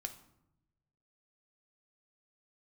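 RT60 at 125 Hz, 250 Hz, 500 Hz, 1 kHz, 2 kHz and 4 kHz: 1.7 s, 1.2 s, 0.90 s, 0.80 s, 0.60 s, 0.50 s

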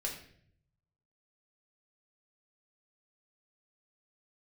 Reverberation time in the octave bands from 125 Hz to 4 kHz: 1.3 s, 0.85 s, 0.70 s, 0.50 s, 0.60 s, 0.50 s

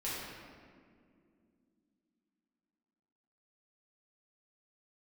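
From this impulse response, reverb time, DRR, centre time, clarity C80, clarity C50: 2.3 s, -9.5 dB, 122 ms, 0.0 dB, -2.5 dB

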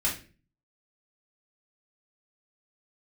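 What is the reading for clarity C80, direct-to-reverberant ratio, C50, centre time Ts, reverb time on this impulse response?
14.0 dB, -6.0 dB, 8.0 dB, 25 ms, 0.40 s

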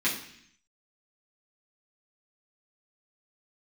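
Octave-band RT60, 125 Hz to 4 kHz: 0.90 s, 0.85 s, 0.65 s, 0.65 s, 0.85 s, 0.80 s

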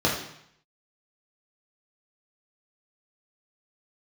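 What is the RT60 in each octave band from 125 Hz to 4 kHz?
0.85 s, 0.70 s, 0.65 s, 0.75 s, 0.75 s, 0.70 s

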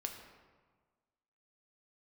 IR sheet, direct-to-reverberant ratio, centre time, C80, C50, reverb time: 3.0 dB, 35 ms, 7.5 dB, 6.0 dB, 1.5 s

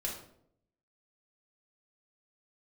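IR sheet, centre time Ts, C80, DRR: 32 ms, 9.0 dB, -2.5 dB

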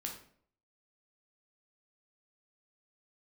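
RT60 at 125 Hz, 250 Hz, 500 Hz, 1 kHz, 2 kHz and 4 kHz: 0.65 s, 0.65 s, 0.65 s, 0.50 s, 0.45 s, 0.40 s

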